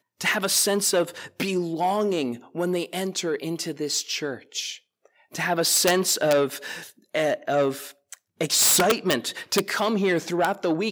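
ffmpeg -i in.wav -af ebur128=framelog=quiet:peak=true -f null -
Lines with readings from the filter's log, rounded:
Integrated loudness:
  I:         -23.4 LUFS
  Threshold: -33.9 LUFS
Loudness range:
  LRA:         5.1 LU
  Threshold: -44.2 LUFS
  LRA low:   -27.5 LUFS
  LRA high:  -22.5 LUFS
True peak:
  Peak:       -8.6 dBFS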